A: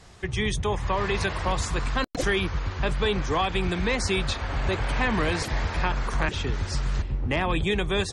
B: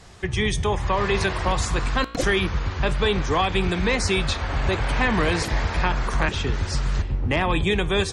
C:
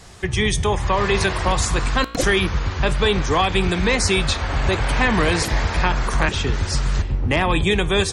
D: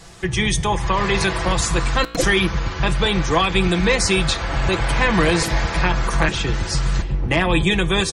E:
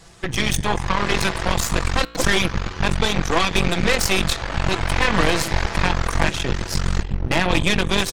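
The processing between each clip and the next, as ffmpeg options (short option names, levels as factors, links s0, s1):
-af "flanger=delay=9.7:depth=8.9:regen=87:speed=0.27:shape=triangular,volume=2.51"
-af "highshelf=f=8300:g=9,volume=1.41"
-af "aecho=1:1:6:0.54"
-af "aeval=exprs='0.631*(cos(1*acos(clip(val(0)/0.631,-1,1)))-cos(1*PI/2))+0.0891*(cos(3*acos(clip(val(0)/0.631,-1,1)))-cos(3*PI/2))+0.1*(cos(6*acos(clip(val(0)/0.631,-1,1)))-cos(6*PI/2))':c=same"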